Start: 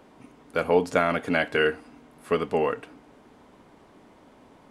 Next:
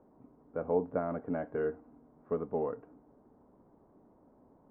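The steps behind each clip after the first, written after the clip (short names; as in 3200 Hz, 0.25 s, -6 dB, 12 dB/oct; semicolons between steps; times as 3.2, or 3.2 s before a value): Bessel low-pass 750 Hz, order 4; gain -7.5 dB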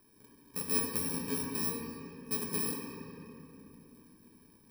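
FFT order left unsorted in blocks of 64 samples; reverb RT60 3.2 s, pre-delay 5 ms, DRR 0 dB; gain -2.5 dB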